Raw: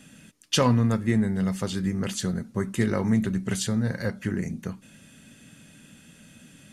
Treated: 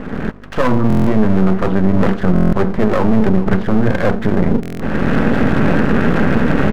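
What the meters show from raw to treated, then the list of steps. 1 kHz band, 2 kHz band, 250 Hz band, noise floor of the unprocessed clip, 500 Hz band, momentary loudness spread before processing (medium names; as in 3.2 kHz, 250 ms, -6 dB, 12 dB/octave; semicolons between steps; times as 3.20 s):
+14.5 dB, +14.0 dB, +12.5 dB, -54 dBFS, +14.5 dB, 9 LU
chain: single-diode clipper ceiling -16 dBFS; recorder AGC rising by 31 dB/s; low-pass 1.4 kHz 24 dB/octave; bass shelf 200 Hz -8 dB; de-hum 163.2 Hz, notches 7; reverse; compression 6:1, threshold -36 dBFS, peak gain reduction 15.5 dB; reverse; mains buzz 50 Hz, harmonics 6, -66 dBFS -1 dB/octave; half-wave rectifier; on a send: delay 423 ms -16 dB; on the sum: loudness maximiser +33 dB; buffer glitch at 0.88/2.34/4.61 s, samples 1024, times 7; trim -1 dB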